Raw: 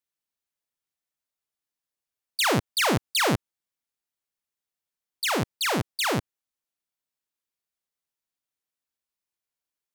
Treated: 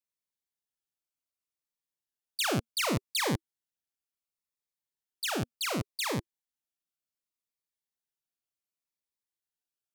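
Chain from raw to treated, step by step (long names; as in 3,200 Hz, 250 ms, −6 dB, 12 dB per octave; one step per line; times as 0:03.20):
phaser whose notches keep moving one way falling 0.68 Hz
level −5 dB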